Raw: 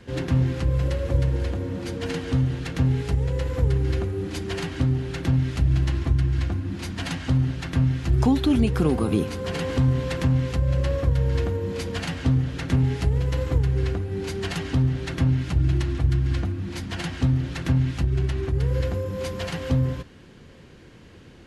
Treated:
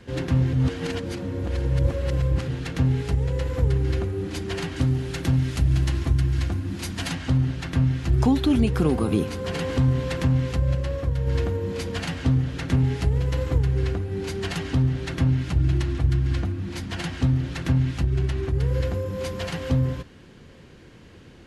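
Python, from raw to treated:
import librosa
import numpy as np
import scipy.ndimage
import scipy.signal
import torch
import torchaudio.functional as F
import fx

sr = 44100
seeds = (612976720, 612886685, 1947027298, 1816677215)

y = fx.high_shelf(x, sr, hz=6000.0, db=9.5, at=(4.76, 7.11))
y = fx.edit(y, sr, fx.reverse_span(start_s=0.53, length_s=1.95),
    fx.clip_gain(start_s=10.75, length_s=0.52, db=-3.5), tone=tone)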